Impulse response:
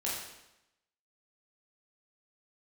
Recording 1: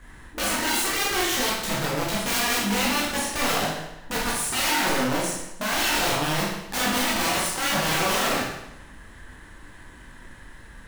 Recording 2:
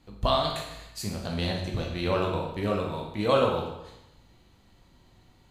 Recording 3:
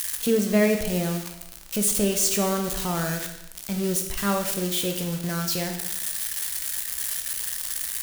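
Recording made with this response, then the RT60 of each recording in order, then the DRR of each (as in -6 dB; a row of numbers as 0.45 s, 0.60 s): 1; 0.90 s, 0.90 s, 0.90 s; -6.5 dB, -0.5 dB, 4.0 dB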